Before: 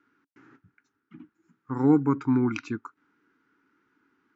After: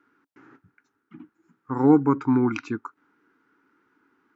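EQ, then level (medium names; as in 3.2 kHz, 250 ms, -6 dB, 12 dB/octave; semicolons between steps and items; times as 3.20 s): peaking EQ 680 Hz +7 dB 2.1 oct; 0.0 dB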